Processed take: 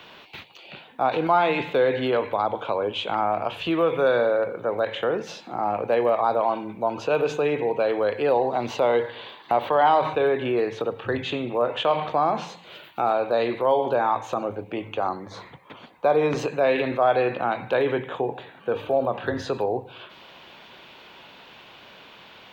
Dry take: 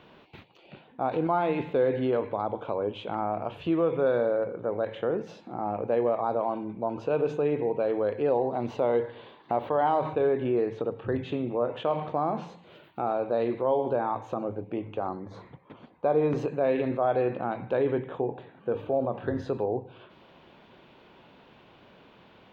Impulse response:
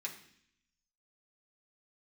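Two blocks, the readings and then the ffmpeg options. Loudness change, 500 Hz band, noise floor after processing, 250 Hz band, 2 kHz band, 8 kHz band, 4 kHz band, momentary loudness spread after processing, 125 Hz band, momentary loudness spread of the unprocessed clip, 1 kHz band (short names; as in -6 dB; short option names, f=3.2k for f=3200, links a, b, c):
+4.5 dB, +4.0 dB, -48 dBFS, +1.0 dB, +11.0 dB, n/a, +14.0 dB, 11 LU, 0.0 dB, 8 LU, +7.0 dB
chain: -filter_complex "[0:a]highshelf=f=2k:g=11,acrossover=split=130|530[a][b][c];[c]acontrast=54[d];[a][b][d]amix=inputs=3:normalize=0"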